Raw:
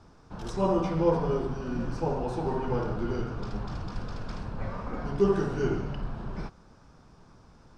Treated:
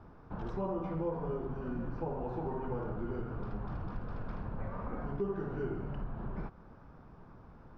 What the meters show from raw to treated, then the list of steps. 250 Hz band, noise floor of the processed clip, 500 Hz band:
-8.0 dB, -55 dBFS, -9.5 dB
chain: compression 3:1, threshold -37 dBFS, peak gain reduction 14.5 dB; low-pass 1.8 kHz 12 dB/octave; trim +1 dB

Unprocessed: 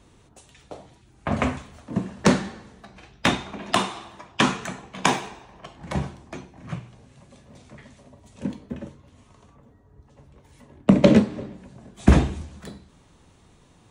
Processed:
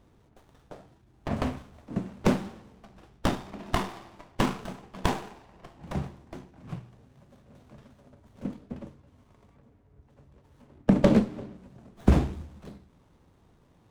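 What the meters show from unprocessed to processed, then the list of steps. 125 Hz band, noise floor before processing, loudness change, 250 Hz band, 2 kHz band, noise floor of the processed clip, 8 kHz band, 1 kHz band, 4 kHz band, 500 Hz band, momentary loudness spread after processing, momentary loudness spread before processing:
-4.5 dB, -56 dBFS, -6.0 dB, -5.0 dB, -10.0 dB, -62 dBFS, -11.5 dB, -7.0 dB, -11.0 dB, -5.5 dB, 22 LU, 21 LU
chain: sliding maximum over 17 samples; trim -5 dB

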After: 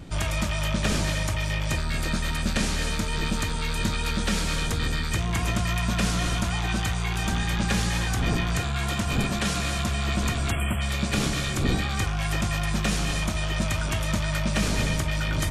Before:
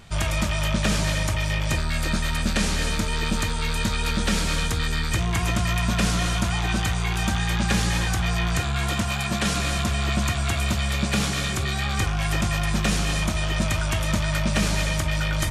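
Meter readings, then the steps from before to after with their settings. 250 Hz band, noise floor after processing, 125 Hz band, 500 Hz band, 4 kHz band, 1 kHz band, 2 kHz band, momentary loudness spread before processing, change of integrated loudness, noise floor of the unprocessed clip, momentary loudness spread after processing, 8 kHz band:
-1.5 dB, -28 dBFS, -2.0 dB, -1.5 dB, -2.5 dB, -2.5 dB, -2.5 dB, 2 LU, -2.0 dB, -26 dBFS, 2 LU, -2.5 dB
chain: wind noise 220 Hz -33 dBFS; spectral selection erased 10.51–10.81 s, 3.4–7.4 kHz; trim -2.5 dB

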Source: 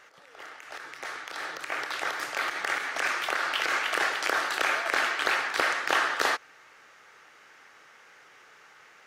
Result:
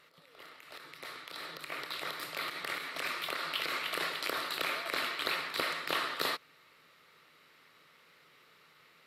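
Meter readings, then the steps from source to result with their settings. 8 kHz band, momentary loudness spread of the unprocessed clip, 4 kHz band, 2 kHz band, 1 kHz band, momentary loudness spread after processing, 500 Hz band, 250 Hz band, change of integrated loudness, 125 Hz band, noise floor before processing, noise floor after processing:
-9.0 dB, 13 LU, -3.0 dB, -9.5 dB, -9.0 dB, 13 LU, -6.5 dB, -4.0 dB, -7.5 dB, no reading, -55 dBFS, -63 dBFS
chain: graphic EQ with 31 bands 100 Hz +4 dB, 160 Hz +12 dB, 250 Hz +4 dB, 800 Hz -10 dB, 1.6 kHz -9 dB, 4 kHz +8 dB, 6.3 kHz -11 dB, 12.5 kHz +11 dB; trim -5.5 dB

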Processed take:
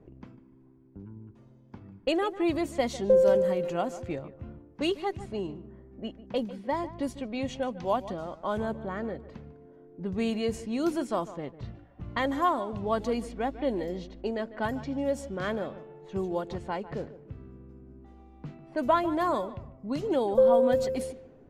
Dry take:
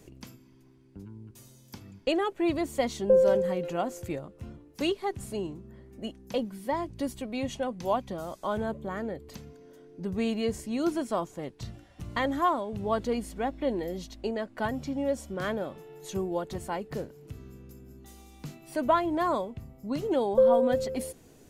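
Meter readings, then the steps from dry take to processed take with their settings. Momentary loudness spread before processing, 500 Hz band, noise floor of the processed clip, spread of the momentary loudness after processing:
21 LU, +0.5 dB, -55 dBFS, 21 LU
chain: filtered feedback delay 149 ms, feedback 27%, low-pass 3.3 kHz, level -15 dB; level-controlled noise filter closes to 1 kHz, open at -25 dBFS

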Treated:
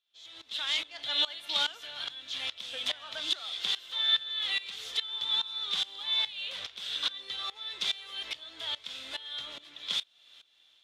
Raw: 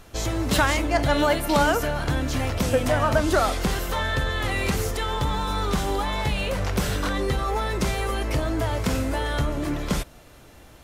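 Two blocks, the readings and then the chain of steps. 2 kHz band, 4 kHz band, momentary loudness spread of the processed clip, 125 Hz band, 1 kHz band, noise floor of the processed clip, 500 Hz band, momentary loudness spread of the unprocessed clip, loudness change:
-11.5 dB, +4.5 dB, 9 LU, under -35 dB, -20.0 dB, -64 dBFS, -26.0 dB, 6 LU, -7.0 dB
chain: band-pass filter 3.5 kHz, Q 8.2; level rider gain up to 15.5 dB; sawtooth tremolo in dB swelling 2.4 Hz, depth 19 dB

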